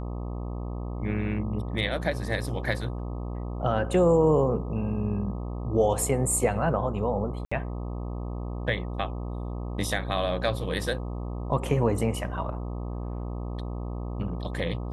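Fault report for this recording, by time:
buzz 60 Hz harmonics 21 -33 dBFS
7.45–7.51 s: dropout 65 ms

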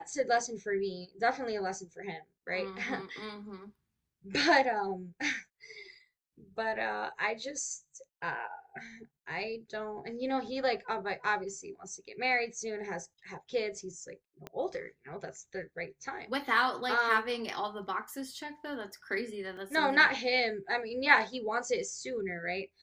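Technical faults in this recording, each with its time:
14.47 s: pop -26 dBFS
19.57 s: dropout 3 ms

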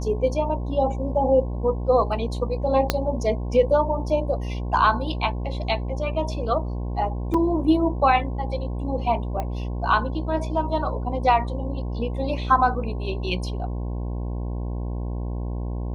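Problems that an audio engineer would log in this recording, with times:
buzz 60 Hz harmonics 18 -28 dBFS
2.90 s: pop -4 dBFS
7.34 s: dropout 3.8 ms
9.40 s: pop -16 dBFS

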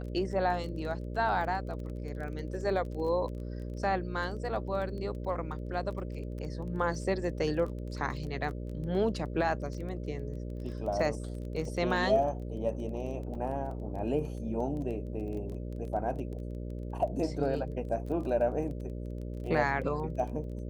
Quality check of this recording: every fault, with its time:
buzz 60 Hz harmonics 10 -38 dBFS
crackle 17 per s -39 dBFS
13.35 s: dropout 4.1 ms

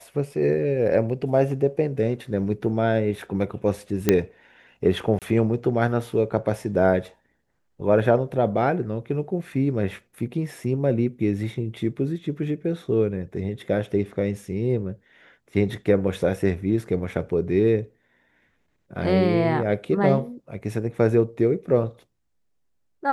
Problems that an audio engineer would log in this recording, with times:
4.09 s: pop -4 dBFS
5.19–5.22 s: dropout 27 ms

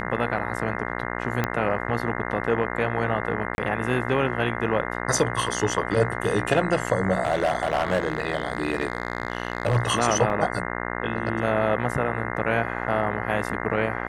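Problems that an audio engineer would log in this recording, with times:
buzz 60 Hz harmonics 35 -30 dBFS
1.44 s: pop -9 dBFS
3.55–3.58 s: dropout 31 ms
7.23–9.77 s: clipped -16.5 dBFS
10.30 s: dropout 3.8 ms

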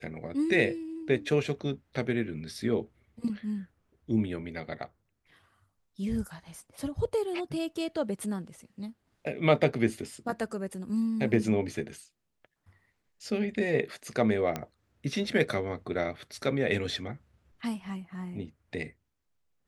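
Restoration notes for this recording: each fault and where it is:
14.56 s: pop -17 dBFS

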